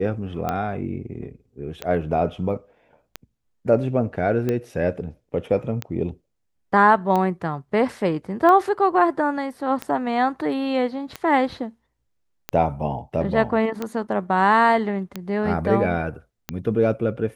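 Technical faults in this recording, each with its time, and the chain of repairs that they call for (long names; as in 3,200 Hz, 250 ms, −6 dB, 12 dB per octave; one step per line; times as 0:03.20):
scratch tick 45 rpm −12 dBFS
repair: click removal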